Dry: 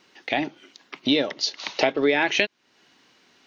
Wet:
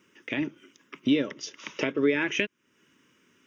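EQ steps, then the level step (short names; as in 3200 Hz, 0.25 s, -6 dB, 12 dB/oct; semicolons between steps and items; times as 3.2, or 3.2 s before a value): HPF 60 Hz; bell 1900 Hz -7.5 dB 1.1 oct; fixed phaser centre 1800 Hz, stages 4; +1.5 dB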